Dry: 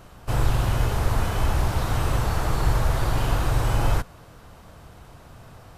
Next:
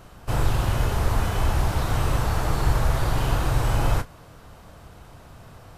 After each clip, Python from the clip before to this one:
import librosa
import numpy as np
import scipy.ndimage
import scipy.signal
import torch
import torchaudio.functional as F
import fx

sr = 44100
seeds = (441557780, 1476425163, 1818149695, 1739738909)

y = fx.doubler(x, sr, ms=30.0, db=-12.0)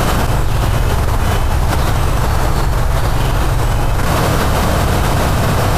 y = fx.env_flatten(x, sr, amount_pct=100)
y = y * librosa.db_to_amplitude(3.0)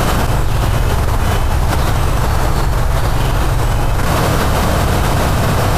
y = x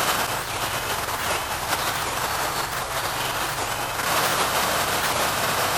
y = fx.highpass(x, sr, hz=1400.0, slope=6)
y = fx.record_warp(y, sr, rpm=78.0, depth_cents=250.0)